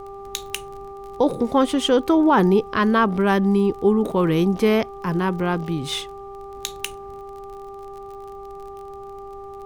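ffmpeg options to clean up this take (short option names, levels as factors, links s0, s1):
-af "adeclick=t=4,bandreject=f=396.1:t=h:w=4,bandreject=f=792.2:t=h:w=4,bandreject=f=1188.3:t=h:w=4,agate=range=0.0891:threshold=0.0355"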